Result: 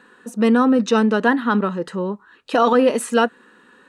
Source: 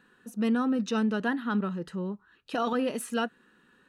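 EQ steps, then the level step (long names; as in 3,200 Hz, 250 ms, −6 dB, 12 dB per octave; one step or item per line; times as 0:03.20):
octave-band graphic EQ 250/500/1,000/2,000/4,000/8,000 Hz +8/+11/+11/+8/+6/+11 dB
0.0 dB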